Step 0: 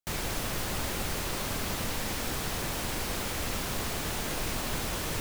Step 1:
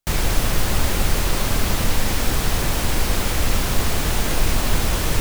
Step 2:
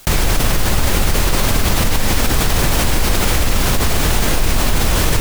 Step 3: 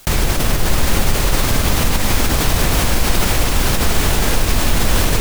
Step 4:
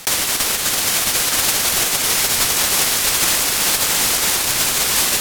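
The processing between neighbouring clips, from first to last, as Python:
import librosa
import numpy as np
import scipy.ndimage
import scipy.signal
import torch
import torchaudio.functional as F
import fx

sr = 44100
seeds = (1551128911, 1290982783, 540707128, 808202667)

y1 = fx.low_shelf(x, sr, hz=72.0, db=12.0)
y1 = F.gain(torch.from_numpy(y1), 9.0).numpy()
y2 = fx.env_flatten(y1, sr, amount_pct=70)
y3 = fx.echo_split(y2, sr, split_hz=660.0, low_ms=92, high_ms=665, feedback_pct=52, wet_db=-6.0)
y3 = F.gain(torch.from_numpy(y3), -1.5).numpy()
y4 = np.diff(y3, prepend=0.0)
y4 = np.repeat(y4[::2], 2)[:len(y4)]
y4 = F.gain(torch.from_numpy(y4), 4.5).numpy()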